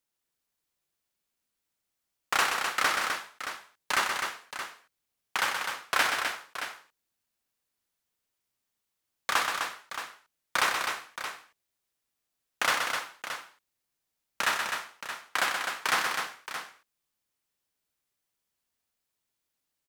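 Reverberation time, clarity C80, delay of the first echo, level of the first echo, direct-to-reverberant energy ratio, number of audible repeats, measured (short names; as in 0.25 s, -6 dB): none, none, 0.126 s, -6.0 dB, none, 3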